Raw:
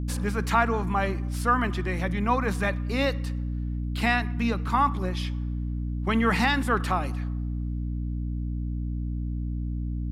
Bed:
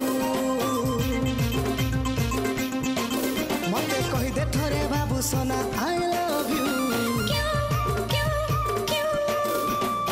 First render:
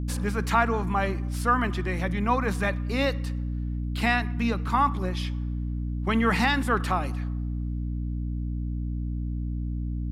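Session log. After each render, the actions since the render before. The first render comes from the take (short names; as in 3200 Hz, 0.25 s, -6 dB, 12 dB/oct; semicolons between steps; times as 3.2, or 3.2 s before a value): nothing audible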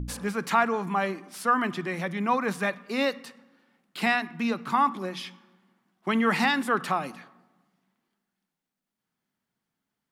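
de-hum 60 Hz, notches 5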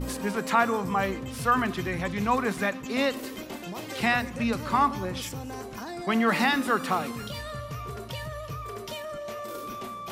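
add bed -11.5 dB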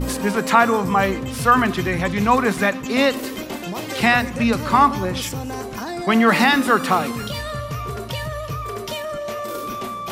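gain +8.5 dB; limiter -2 dBFS, peak gain reduction 1.5 dB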